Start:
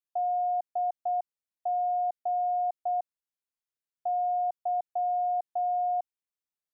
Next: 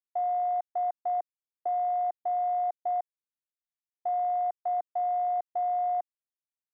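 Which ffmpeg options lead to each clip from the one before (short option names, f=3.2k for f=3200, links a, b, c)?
-af "afwtdn=0.02"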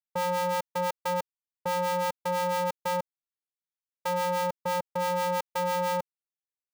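-af "aeval=exprs='val(0)*sgn(sin(2*PI*180*n/s))':c=same"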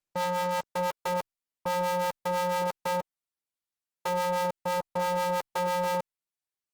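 -ar 48000 -c:a libopus -b:a 16k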